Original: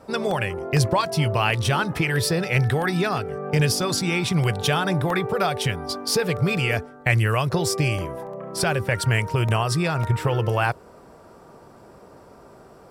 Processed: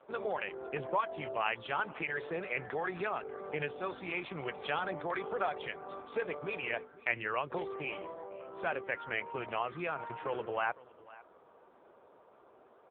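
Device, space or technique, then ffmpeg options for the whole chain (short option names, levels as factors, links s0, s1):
satellite phone: -af "highpass=390,lowpass=3000,aecho=1:1:505:0.0944,volume=0.376" -ar 8000 -c:a libopencore_amrnb -b:a 5900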